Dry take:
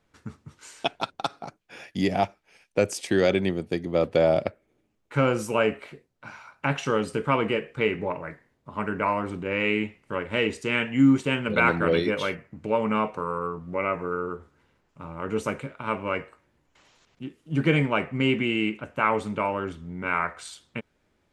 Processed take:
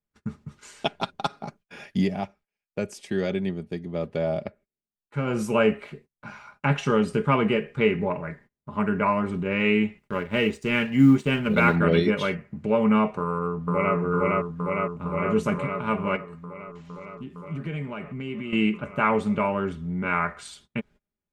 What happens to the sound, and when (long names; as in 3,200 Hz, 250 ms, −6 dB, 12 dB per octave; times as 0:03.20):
0:01.95–0:05.41: duck −8 dB, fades 0.16 s
0:09.99–0:11.76: mu-law and A-law mismatch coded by A
0:13.21–0:13.95: delay throw 460 ms, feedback 80%, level −1 dB
0:16.16–0:18.53: downward compressor 2.5 to 1, threshold −39 dBFS
whole clip: noise gate −53 dBFS, range −25 dB; bass and treble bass +7 dB, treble −3 dB; comb filter 4.9 ms, depth 47%